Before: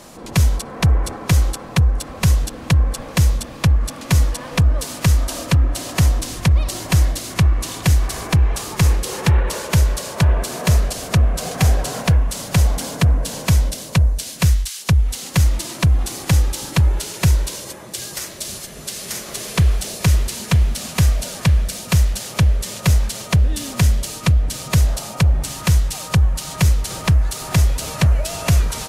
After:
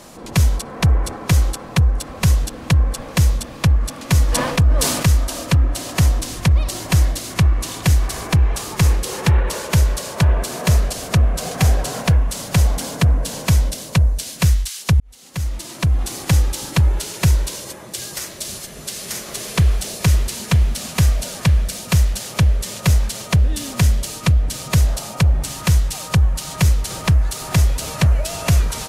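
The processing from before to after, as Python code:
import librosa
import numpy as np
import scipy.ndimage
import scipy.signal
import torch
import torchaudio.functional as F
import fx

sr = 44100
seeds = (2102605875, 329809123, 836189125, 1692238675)

y = fx.sustainer(x, sr, db_per_s=41.0, at=(4.28, 5.16), fade=0.02)
y = fx.edit(y, sr, fx.fade_in_span(start_s=15.0, length_s=1.14), tone=tone)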